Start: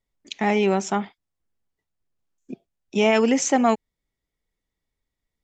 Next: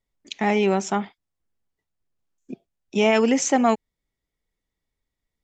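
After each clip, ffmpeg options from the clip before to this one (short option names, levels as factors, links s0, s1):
-af anull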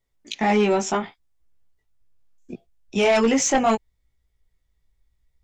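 -af "flanger=delay=15.5:depth=3.4:speed=0.7,asubboost=boost=6.5:cutoff=93,aeval=exprs='0.355*sin(PI/2*2*val(0)/0.355)':c=same,volume=0.668"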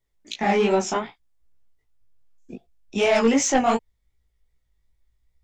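-af "flanger=delay=15.5:depth=6.4:speed=2.6,volume=1.26"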